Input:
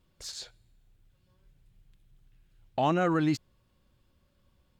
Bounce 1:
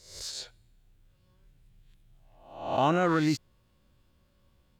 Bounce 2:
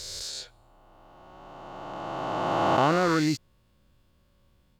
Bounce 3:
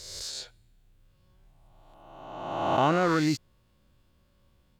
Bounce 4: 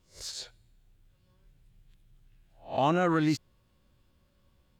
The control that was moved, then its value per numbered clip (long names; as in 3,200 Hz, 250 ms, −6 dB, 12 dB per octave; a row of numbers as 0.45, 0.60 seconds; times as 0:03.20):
peak hold with a rise ahead of every peak, rising 60 dB in: 0.66, 3.09, 1.48, 0.31 seconds